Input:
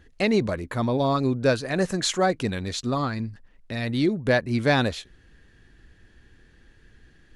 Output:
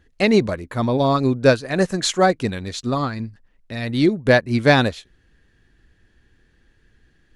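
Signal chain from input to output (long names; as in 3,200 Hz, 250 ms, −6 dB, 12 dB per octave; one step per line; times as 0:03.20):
expander for the loud parts 1.5 to 1, over −39 dBFS
level +7.5 dB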